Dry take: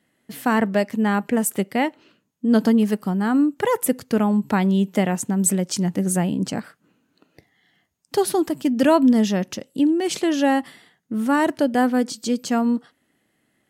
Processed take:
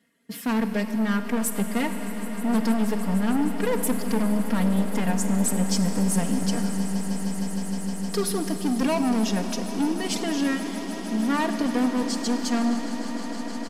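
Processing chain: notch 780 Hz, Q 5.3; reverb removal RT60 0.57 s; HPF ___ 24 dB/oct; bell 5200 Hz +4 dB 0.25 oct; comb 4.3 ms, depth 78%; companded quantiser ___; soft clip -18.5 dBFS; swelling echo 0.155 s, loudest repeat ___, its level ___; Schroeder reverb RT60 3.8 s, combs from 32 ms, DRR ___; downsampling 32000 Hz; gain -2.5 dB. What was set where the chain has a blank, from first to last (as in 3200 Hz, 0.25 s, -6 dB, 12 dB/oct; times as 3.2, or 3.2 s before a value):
63 Hz, 8-bit, 8, -17.5 dB, 7.5 dB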